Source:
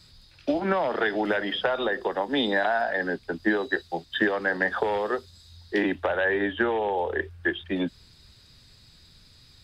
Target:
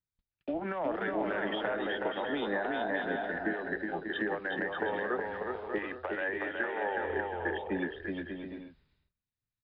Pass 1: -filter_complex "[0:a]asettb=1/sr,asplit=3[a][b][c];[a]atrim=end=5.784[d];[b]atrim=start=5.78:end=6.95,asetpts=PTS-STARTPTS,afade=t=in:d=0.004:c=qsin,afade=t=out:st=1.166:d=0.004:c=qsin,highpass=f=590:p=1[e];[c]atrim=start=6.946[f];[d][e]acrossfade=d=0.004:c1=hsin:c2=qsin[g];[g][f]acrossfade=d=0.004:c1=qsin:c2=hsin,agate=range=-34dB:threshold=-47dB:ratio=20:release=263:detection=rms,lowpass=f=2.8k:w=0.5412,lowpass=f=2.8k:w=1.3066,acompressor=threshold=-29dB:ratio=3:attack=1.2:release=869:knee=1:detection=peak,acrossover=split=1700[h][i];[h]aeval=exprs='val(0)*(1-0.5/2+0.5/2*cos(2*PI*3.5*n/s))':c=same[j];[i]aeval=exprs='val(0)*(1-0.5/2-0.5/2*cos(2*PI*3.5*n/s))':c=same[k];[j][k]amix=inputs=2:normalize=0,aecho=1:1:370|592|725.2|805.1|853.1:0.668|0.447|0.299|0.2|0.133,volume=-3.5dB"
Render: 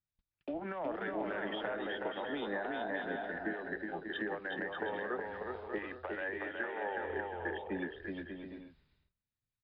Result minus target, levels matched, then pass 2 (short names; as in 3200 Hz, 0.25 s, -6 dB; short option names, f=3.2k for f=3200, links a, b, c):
compressor: peak gain reduction +5 dB
-filter_complex "[0:a]asettb=1/sr,asplit=3[a][b][c];[a]atrim=end=5.784[d];[b]atrim=start=5.78:end=6.95,asetpts=PTS-STARTPTS,afade=t=in:d=0.004:c=qsin,afade=t=out:st=1.166:d=0.004:c=qsin,highpass=f=590:p=1[e];[c]atrim=start=6.946[f];[d][e]acrossfade=d=0.004:c1=hsin:c2=qsin[g];[g][f]acrossfade=d=0.004:c1=qsin:c2=hsin,agate=range=-34dB:threshold=-47dB:ratio=20:release=263:detection=rms,lowpass=f=2.8k:w=0.5412,lowpass=f=2.8k:w=1.3066,acompressor=threshold=-21.5dB:ratio=3:attack=1.2:release=869:knee=1:detection=peak,acrossover=split=1700[h][i];[h]aeval=exprs='val(0)*(1-0.5/2+0.5/2*cos(2*PI*3.5*n/s))':c=same[j];[i]aeval=exprs='val(0)*(1-0.5/2-0.5/2*cos(2*PI*3.5*n/s))':c=same[k];[j][k]amix=inputs=2:normalize=0,aecho=1:1:370|592|725.2|805.1|853.1:0.668|0.447|0.299|0.2|0.133,volume=-3.5dB"